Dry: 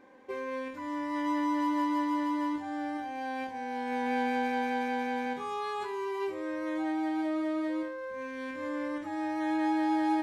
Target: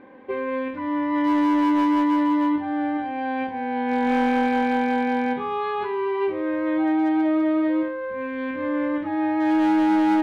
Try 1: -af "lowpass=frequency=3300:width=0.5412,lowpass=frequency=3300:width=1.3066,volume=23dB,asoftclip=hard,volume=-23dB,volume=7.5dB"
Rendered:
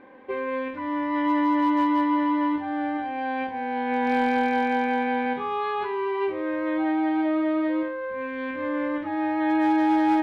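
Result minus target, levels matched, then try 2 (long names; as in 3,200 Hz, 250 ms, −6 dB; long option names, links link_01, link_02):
125 Hz band −2.5 dB
-af "lowpass=frequency=3300:width=0.5412,lowpass=frequency=3300:width=1.3066,equalizer=frequency=160:width_type=o:width=2.7:gain=5,volume=23dB,asoftclip=hard,volume=-23dB,volume=7.5dB"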